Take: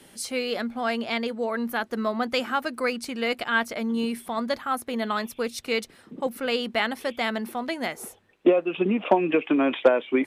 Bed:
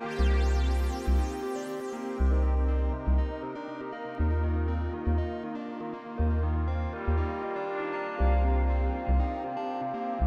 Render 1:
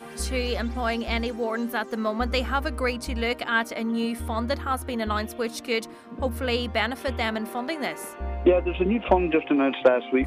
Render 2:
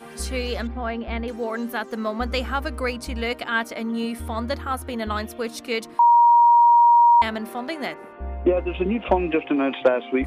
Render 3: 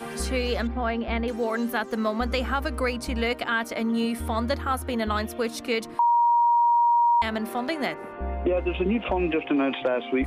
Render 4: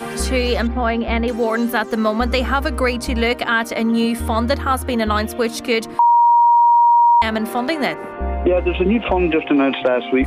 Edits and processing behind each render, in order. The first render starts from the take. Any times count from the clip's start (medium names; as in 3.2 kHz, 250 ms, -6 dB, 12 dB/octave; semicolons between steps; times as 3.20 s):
add bed -7 dB
0.67–1.28 s: distance through air 410 m; 5.99–7.22 s: bleep 947 Hz -10.5 dBFS; 7.94–8.57 s: distance through air 430 m
peak limiter -15.5 dBFS, peak gain reduction 9.5 dB; three bands compressed up and down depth 40%
trim +8 dB